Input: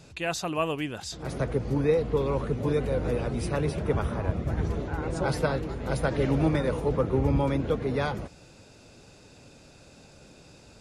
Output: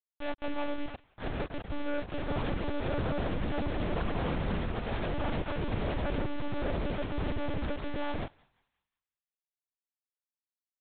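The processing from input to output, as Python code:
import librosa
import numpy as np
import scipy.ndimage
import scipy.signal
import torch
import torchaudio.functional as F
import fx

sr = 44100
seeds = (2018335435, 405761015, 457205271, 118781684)

y = scipy.signal.sosfilt(scipy.signal.butter(2, 1200.0, 'lowpass', fs=sr, output='sos'), x)
y = fx.over_compress(y, sr, threshold_db=-30.0, ratio=-0.5, at=(5.38, 5.97), fade=0.02)
y = fx.tremolo_random(y, sr, seeds[0], hz=3.5, depth_pct=75)
y = fx.quant_companded(y, sr, bits=2)
y = fx.echo_thinned(y, sr, ms=182, feedback_pct=41, hz=750.0, wet_db=-24.0)
y = fx.lpc_monotone(y, sr, seeds[1], pitch_hz=290.0, order=8)
y = fx.doppler_dist(y, sr, depth_ms=0.12, at=(6.65, 7.11))
y = y * librosa.db_to_amplitude(-4.5)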